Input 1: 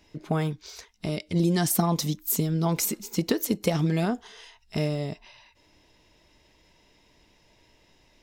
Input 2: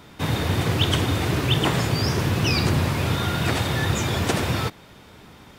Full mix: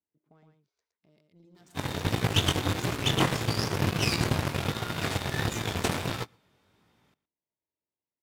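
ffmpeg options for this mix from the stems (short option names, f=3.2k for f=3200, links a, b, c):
-filter_complex "[0:a]equalizer=f=7.2k:t=o:w=0.69:g=9,adynamicsmooth=sensitivity=3:basefreq=1.7k,lowshelf=f=95:g=-9,volume=-16dB,asplit=2[a][b];[b]volume=-4.5dB[c];[1:a]flanger=delay=17:depth=5.4:speed=1.5,adelay=1550,volume=1dB,asplit=2[d][e];[e]volume=-19dB[f];[c][f]amix=inputs=2:normalize=0,aecho=0:1:116:1[g];[a][d][g]amix=inputs=3:normalize=0,highpass=68,aeval=exprs='0.355*(cos(1*acos(clip(val(0)/0.355,-1,1)))-cos(1*PI/2))+0.0112*(cos(3*acos(clip(val(0)/0.355,-1,1)))-cos(3*PI/2))+0.0398*(cos(7*acos(clip(val(0)/0.355,-1,1)))-cos(7*PI/2))':c=same"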